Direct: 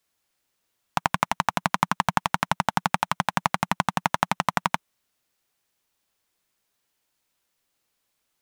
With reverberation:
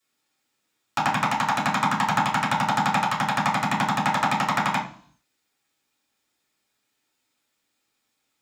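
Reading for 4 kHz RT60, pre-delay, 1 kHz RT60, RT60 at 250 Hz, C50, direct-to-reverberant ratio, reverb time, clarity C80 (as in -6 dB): 0.70 s, 3 ms, 0.50 s, 0.70 s, 8.0 dB, -6.5 dB, 0.55 s, 13.0 dB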